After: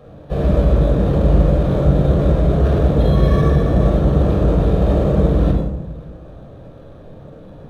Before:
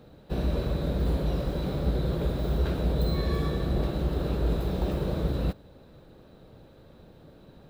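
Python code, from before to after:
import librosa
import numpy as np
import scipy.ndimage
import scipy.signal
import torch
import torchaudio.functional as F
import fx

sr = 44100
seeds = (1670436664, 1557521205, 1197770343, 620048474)

y = fx.peak_eq(x, sr, hz=700.0, db=5.0, octaves=1.8)
y = fx.room_shoebox(y, sr, seeds[0], volume_m3=3000.0, walls='furnished', distance_m=6.0)
y = np.interp(np.arange(len(y)), np.arange(len(y))[::6], y[::6])
y = F.gain(torch.from_numpy(y), 3.5).numpy()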